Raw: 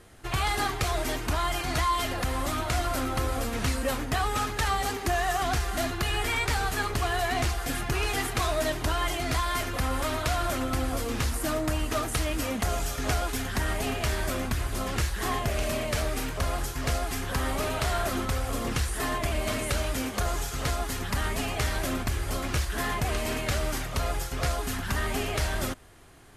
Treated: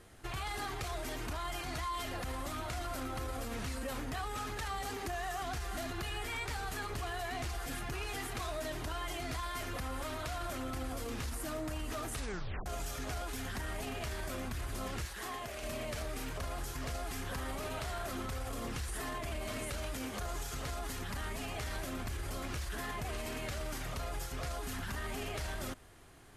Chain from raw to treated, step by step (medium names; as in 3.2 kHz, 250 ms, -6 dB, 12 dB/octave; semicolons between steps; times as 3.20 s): peak limiter -26.5 dBFS, peak gain reduction 10 dB; 12.14 s: tape stop 0.52 s; 15.05–15.63 s: bass shelf 220 Hz -11 dB; trim -4.5 dB